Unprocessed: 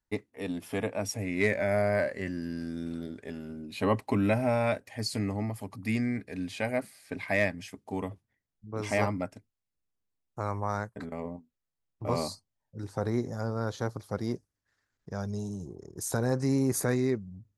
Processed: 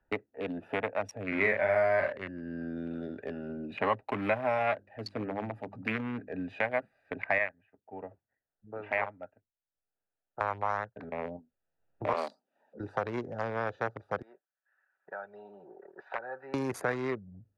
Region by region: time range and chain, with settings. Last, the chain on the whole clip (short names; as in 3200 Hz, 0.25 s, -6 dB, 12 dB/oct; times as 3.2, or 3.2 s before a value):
1.28–2.18 low shelf 490 Hz +3.5 dB + doubler 42 ms -4 dB
4.58–6.33 notches 50/100/150/200/250/300/350 Hz + Doppler distortion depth 0.34 ms
7.38–10.41 LPF 3000 Hz 24 dB/oct + low shelf 470 Hz -11 dB + upward expander, over -44 dBFS
12.13–12.8 steep high-pass 210 Hz + upward compressor, threshold -36 dBFS + three-band expander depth 70%
14.22–16.54 Butterworth band-pass 2100 Hz, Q 0.63 + air absorption 440 m + comb 5.3 ms, depth 39%
whole clip: Wiener smoothing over 41 samples; three-band isolator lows -18 dB, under 600 Hz, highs -22 dB, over 2900 Hz; three-band squash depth 70%; gain +7.5 dB